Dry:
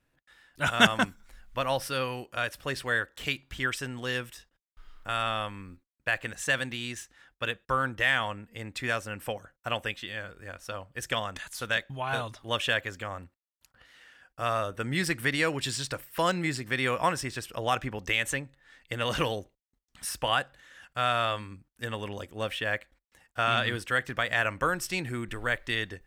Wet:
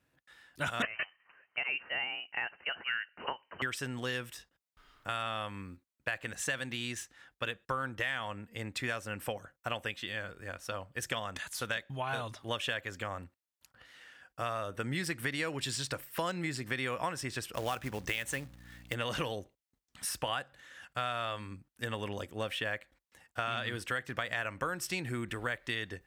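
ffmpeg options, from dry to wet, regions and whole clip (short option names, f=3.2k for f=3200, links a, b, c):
-filter_complex "[0:a]asettb=1/sr,asplit=3[a][b][c];[a]atrim=end=0.824[d];[b]atrim=start=0.82:end=3.62,asetpts=PTS-STARTPTS,afade=t=in:d=0.004:c=qsin,afade=t=out:st=2.796:d=0.004:c=qsin,highpass=f=340:w=0.5412,highpass=f=340:w=1.3066,lowpass=f=2.8k:t=q:w=0.5098,lowpass=f=2.8k:t=q:w=0.6013,lowpass=f=2.8k:t=q:w=0.9,lowpass=f=2.8k:t=q:w=2.563,afreqshift=-3300[e];[c]atrim=start=3.616[f];[d][e]acrossfade=d=0.004:c1=hsin:c2=qsin[g];[g][f]acrossfade=d=0.004:c1=qsin:c2=hsin,asettb=1/sr,asplit=3[h][i][j];[h]atrim=end=17.544[k];[i]atrim=start=17.54:end=18.94,asetpts=PTS-STARTPTS,afade=t=in:d=0.004:c=qsin,afade=t=out:st=1.396:d=0.004:c=qsin,aeval=exprs='val(0)+0.00282*(sin(2*PI*60*n/s)+sin(2*PI*2*60*n/s)/2+sin(2*PI*3*60*n/s)/3+sin(2*PI*4*60*n/s)/4+sin(2*PI*5*60*n/s)/5)':c=same,acrusher=bits=3:mode=log:mix=0:aa=0.000001[l];[j]atrim=start=18.936[m];[k][l]acrossfade=d=0.004:c1=hsin:c2=qsin[n];[n][m]acrossfade=d=0.004:c1=qsin:c2=hsin,highpass=64,acompressor=threshold=-32dB:ratio=4"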